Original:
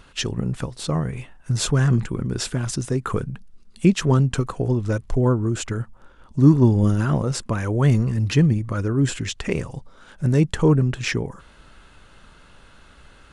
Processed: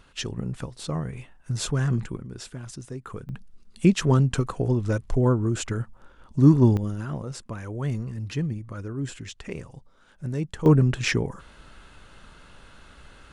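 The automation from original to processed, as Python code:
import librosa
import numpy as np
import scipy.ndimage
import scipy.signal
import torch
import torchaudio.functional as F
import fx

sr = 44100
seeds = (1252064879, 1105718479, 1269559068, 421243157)

y = fx.gain(x, sr, db=fx.steps((0.0, -6.0), (2.17, -13.0), (3.29, -2.0), (6.77, -11.0), (10.66, 0.0)))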